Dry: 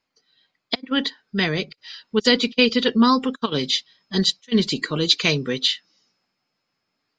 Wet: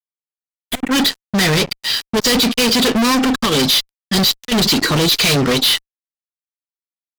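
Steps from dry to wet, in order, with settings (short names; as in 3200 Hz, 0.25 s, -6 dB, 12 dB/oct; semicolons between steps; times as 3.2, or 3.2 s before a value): fuzz box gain 37 dB, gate -44 dBFS; bell 4800 Hz -14.5 dB 0.74 oct, from 0.91 s +2 dB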